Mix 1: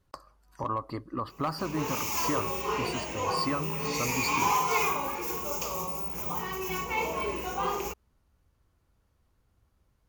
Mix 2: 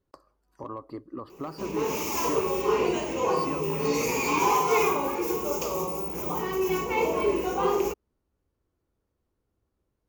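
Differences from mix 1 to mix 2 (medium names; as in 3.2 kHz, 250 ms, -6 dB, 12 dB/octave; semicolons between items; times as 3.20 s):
speech -10.5 dB; master: add peaking EQ 370 Hz +11 dB 1.5 oct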